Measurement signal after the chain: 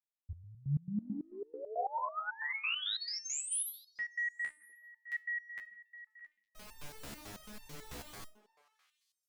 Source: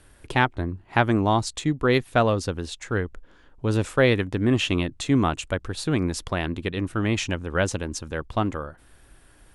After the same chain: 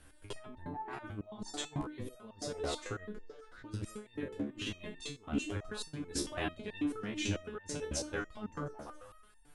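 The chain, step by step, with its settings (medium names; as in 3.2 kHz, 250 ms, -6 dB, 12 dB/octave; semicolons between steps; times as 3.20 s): repeats whose band climbs or falls 123 ms, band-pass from 240 Hz, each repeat 0.7 oct, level -7 dB; compressor with a negative ratio -26 dBFS, ratio -0.5; resonator arpeggio 9.1 Hz 71–900 Hz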